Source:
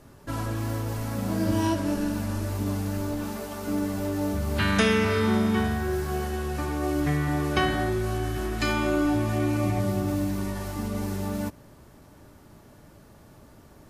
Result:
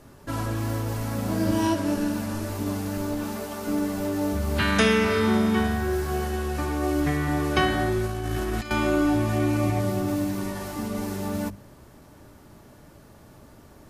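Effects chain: hum notches 50/100/150/200 Hz; 8.06–8.71 s: compressor with a negative ratio -30 dBFS, ratio -0.5; trim +2 dB

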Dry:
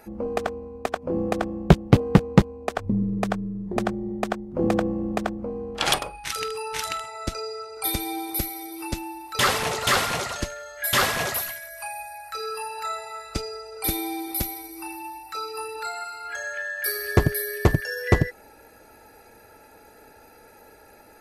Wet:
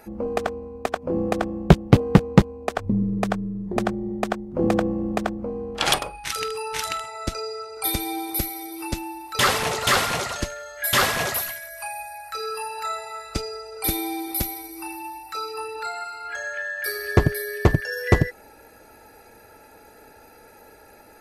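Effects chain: 15.54–17.93 s: treble shelf 8 kHz -9 dB; trim +1.5 dB

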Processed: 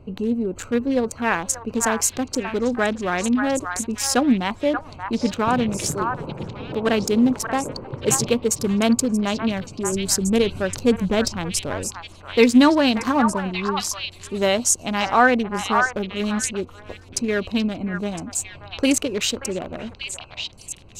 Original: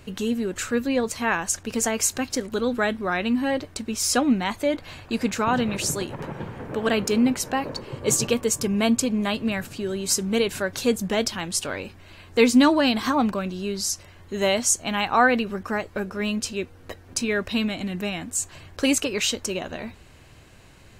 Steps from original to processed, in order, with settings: local Wiener filter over 25 samples; 9.92–11.85 s: bass shelf 120 Hz +10 dB; repeats whose band climbs or falls 581 ms, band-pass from 1.2 kHz, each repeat 1.4 oct, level -1.5 dB; trim +3 dB

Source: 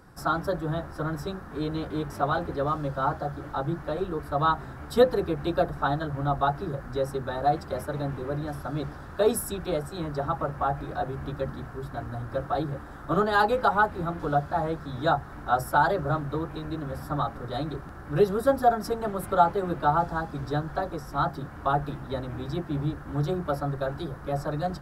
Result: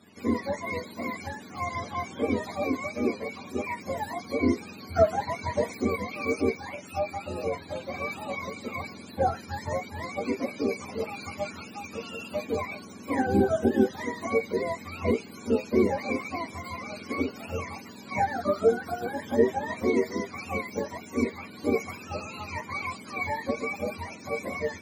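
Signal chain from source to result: spectrum inverted on a logarithmic axis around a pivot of 570 Hz; 6.55–7.91 s: comb of notches 220 Hz

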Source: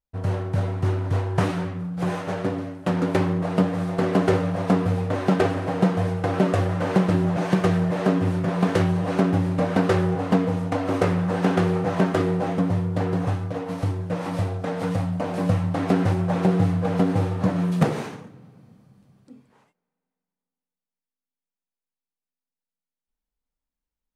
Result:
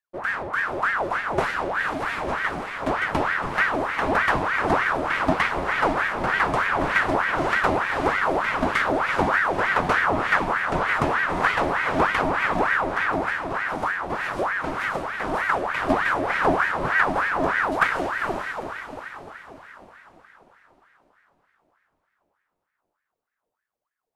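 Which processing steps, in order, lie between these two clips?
echo that smears into a reverb 459 ms, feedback 49%, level -4 dB; ring modulator with a swept carrier 1.1 kHz, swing 60%, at 3.3 Hz

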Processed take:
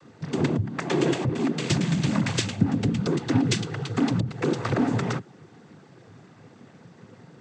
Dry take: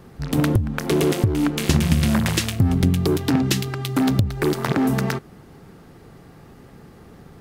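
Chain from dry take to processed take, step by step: 0.77–1.43 s: small resonant body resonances 890/1600/2300/3300 Hz, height 8 dB; noise-vocoded speech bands 16; trim -3.5 dB

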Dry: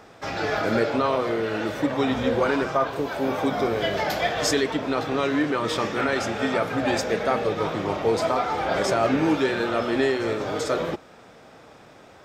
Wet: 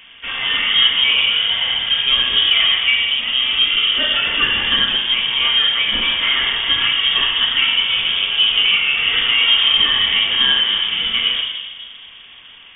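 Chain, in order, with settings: simulated room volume 1200 m³, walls mixed, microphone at 1.8 m; frequency inversion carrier 3.6 kHz; speed mistake 25 fps video run at 24 fps; trim +3.5 dB

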